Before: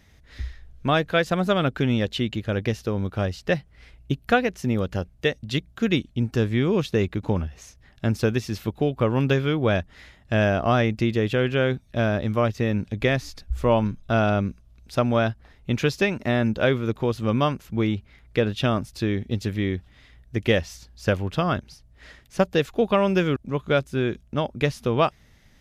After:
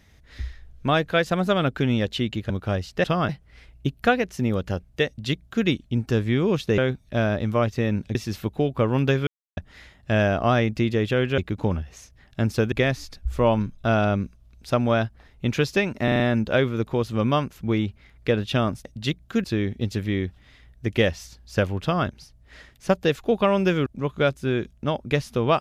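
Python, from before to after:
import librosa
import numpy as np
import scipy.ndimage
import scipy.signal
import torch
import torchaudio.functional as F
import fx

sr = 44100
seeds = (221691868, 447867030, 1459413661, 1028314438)

y = fx.edit(x, sr, fx.cut(start_s=2.5, length_s=0.5),
    fx.duplicate(start_s=5.32, length_s=0.59, to_s=18.94),
    fx.swap(start_s=7.03, length_s=1.34, other_s=11.6, other_length_s=1.37),
    fx.silence(start_s=9.49, length_s=0.3),
    fx.stutter(start_s=16.29, slice_s=0.04, count=5),
    fx.duplicate(start_s=21.32, length_s=0.25, to_s=3.54), tone=tone)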